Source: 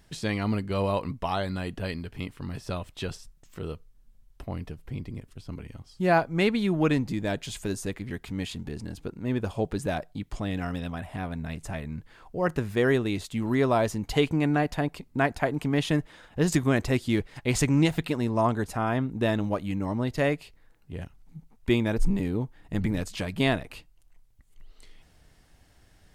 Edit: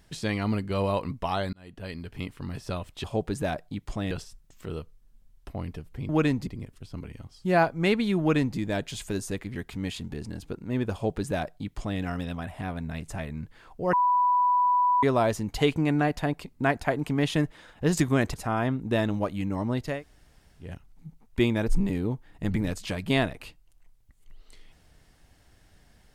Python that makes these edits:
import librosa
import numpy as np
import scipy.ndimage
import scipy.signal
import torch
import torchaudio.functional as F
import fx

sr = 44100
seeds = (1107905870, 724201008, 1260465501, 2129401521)

y = fx.edit(x, sr, fx.fade_in_span(start_s=1.53, length_s=0.64),
    fx.duplicate(start_s=6.75, length_s=0.38, to_s=5.02),
    fx.duplicate(start_s=9.48, length_s=1.07, to_s=3.04),
    fx.bleep(start_s=12.48, length_s=1.1, hz=988.0, db=-19.0),
    fx.cut(start_s=16.89, length_s=1.75),
    fx.room_tone_fill(start_s=20.22, length_s=0.72, crossfade_s=0.24), tone=tone)